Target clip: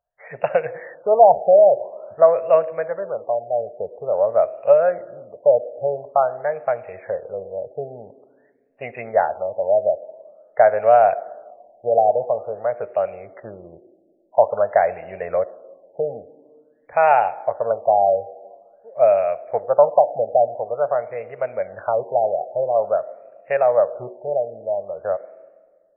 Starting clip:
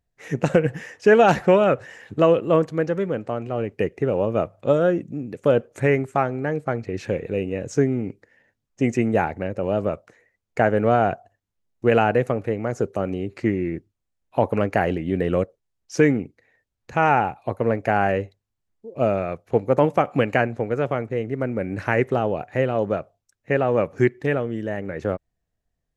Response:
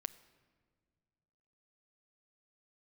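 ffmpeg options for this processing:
-filter_complex "[0:a]asplit=2[link_01][link_02];[link_02]highpass=frequency=620:width_type=q:width=4.9[link_03];[1:a]atrim=start_sample=2205,highshelf=frequency=6500:gain=3[link_04];[link_03][link_04]afir=irnorm=-1:irlink=0,volume=13dB[link_05];[link_01][link_05]amix=inputs=2:normalize=0,afftfilt=real='re*lt(b*sr/1024,820*pow(2900/820,0.5+0.5*sin(2*PI*0.48*pts/sr)))':imag='im*lt(b*sr/1024,820*pow(2900/820,0.5+0.5*sin(2*PI*0.48*pts/sr)))':win_size=1024:overlap=0.75,volume=-15dB"

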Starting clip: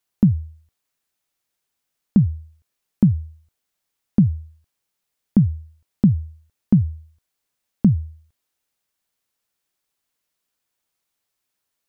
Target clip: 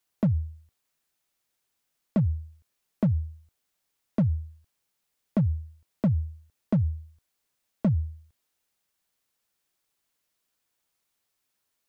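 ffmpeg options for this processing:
ffmpeg -i in.wav -filter_complex "[0:a]acrossover=split=260[link_01][link_02];[link_01]alimiter=limit=-20.5dB:level=0:latency=1[link_03];[link_03][link_02]amix=inputs=2:normalize=0,volume=18dB,asoftclip=hard,volume=-18dB" out.wav

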